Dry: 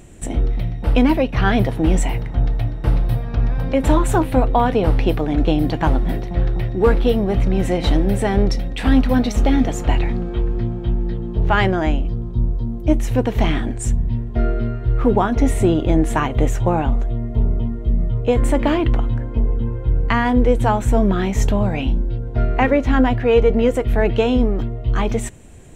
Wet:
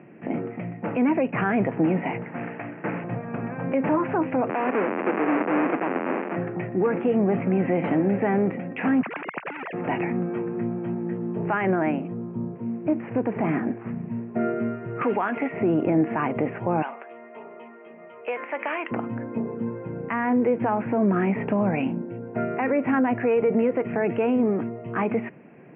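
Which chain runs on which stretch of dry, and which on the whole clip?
2.23–3.04 s: CVSD coder 16 kbps + high-pass 170 Hz + peaking EQ 1.7 kHz +5 dB 0.52 oct
4.49–6.36 s: square wave that keeps the level + high-pass 250 Hz 24 dB/octave + peaking EQ 6.8 kHz -8.5 dB 1.6 oct
9.02–9.73 s: formants replaced by sine waves + hard clipper -16 dBFS + spectrum-flattening compressor 4:1
12.55–14.41 s: CVSD coder 32 kbps + treble shelf 2.8 kHz -11.5 dB
15.01–15.52 s: resonant low-pass 7.1 kHz, resonance Q 4.2 + tilt EQ +4.5 dB/octave + three bands compressed up and down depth 40%
16.82–18.91 s: high-pass 470 Hz + tilt EQ +4.5 dB/octave + compression 2:1, threshold -26 dBFS
whole clip: steep high-pass 150 Hz 36 dB/octave; peak limiter -14 dBFS; steep low-pass 2.6 kHz 72 dB/octave

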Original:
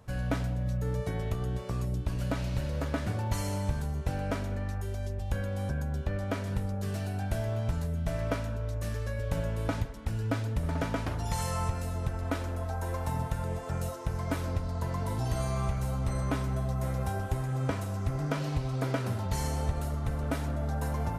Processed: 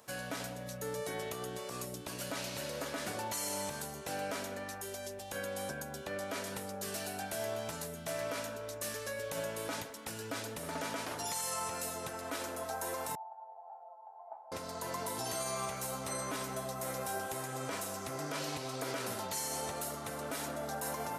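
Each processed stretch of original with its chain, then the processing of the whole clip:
13.15–14.52 s: Butterworth band-pass 790 Hz, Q 5.3 + upward compressor, threshold -53 dBFS
whole clip: high-pass 330 Hz 12 dB/octave; treble shelf 4.3 kHz +12 dB; peak limiter -27.5 dBFS

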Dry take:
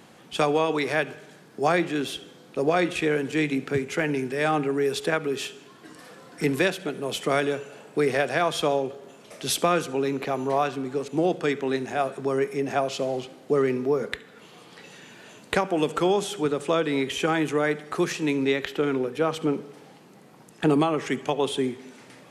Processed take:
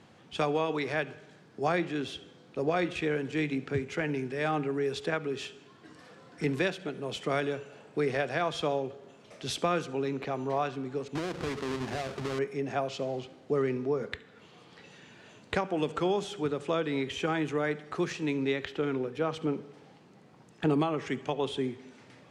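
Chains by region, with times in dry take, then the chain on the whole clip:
11.15–12.39 s: square wave that keeps the level + compression, threshold -25 dBFS
whole clip: low-pass 6.2 kHz 12 dB/octave; peaking EQ 88 Hz +10 dB 1 oct; trim -6.5 dB

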